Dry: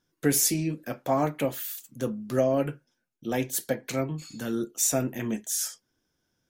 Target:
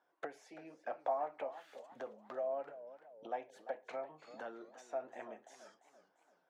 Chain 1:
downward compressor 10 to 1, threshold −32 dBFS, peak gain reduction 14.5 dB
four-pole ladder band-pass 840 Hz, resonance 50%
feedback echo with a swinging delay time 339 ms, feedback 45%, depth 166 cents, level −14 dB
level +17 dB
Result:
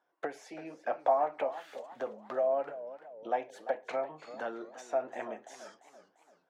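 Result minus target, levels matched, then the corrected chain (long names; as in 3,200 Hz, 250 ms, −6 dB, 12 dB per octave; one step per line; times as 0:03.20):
downward compressor: peak gain reduction −9 dB
downward compressor 10 to 1, threshold −42 dBFS, peak gain reduction 23.5 dB
four-pole ladder band-pass 840 Hz, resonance 50%
feedback echo with a swinging delay time 339 ms, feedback 45%, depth 166 cents, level −14 dB
level +17 dB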